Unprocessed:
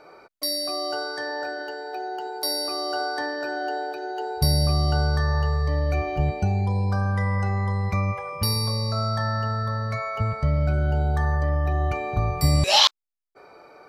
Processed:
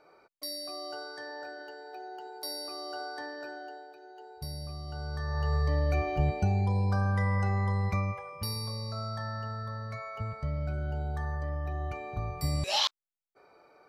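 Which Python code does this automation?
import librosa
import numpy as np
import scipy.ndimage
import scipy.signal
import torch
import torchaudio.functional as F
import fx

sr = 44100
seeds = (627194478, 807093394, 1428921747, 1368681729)

y = fx.gain(x, sr, db=fx.line((3.45, -11.5), (3.87, -19.0), (4.85, -19.0), (5.3, -10.5), (5.55, -4.0), (7.86, -4.0), (8.33, -11.0)))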